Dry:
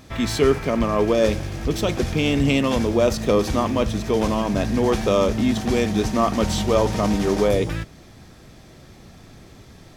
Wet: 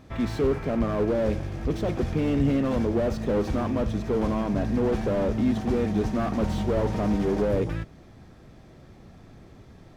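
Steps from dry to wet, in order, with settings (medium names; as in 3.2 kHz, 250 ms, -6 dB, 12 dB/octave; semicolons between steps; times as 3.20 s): treble shelf 2.6 kHz -12 dB; slew-rate limiter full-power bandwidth 55 Hz; trim -3 dB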